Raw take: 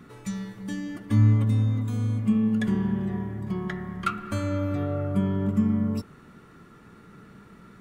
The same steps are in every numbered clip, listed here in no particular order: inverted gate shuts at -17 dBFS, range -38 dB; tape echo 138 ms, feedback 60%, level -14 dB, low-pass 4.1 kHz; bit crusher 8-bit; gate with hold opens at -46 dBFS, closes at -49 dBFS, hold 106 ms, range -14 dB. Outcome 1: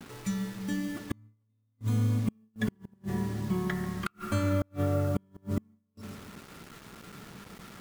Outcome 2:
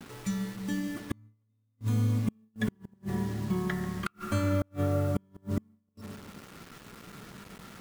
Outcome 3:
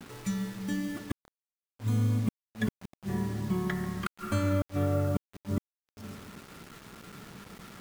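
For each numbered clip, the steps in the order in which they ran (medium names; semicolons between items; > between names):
tape echo > bit crusher > inverted gate > gate with hold; bit crusher > tape echo > inverted gate > gate with hold; tape echo > inverted gate > bit crusher > gate with hold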